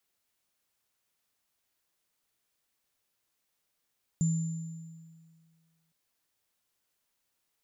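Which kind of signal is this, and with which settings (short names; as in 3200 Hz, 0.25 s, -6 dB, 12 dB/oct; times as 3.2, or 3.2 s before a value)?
sine partials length 1.71 s, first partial 163 Hz, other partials 7160 Hz, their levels -13 dB, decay 1.90 s, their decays 1.45 s, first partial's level -22.5 dB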